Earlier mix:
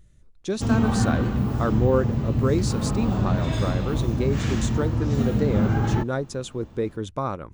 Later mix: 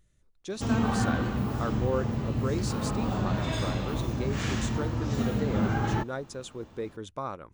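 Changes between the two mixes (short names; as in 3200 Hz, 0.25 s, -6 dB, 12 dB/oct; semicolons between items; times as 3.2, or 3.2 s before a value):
speech -5.5 dB; master: add low shelf 330 Hz -7.5 dB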